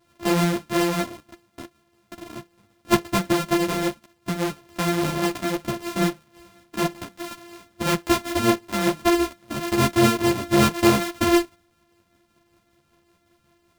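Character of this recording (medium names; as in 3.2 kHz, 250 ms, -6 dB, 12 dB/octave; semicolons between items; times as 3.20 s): a buzz of ramps at a fixed pitch in blocks of 128 samples; tremolo triangle 5.2 Hz, depth 40%; a shimmering, thickened sound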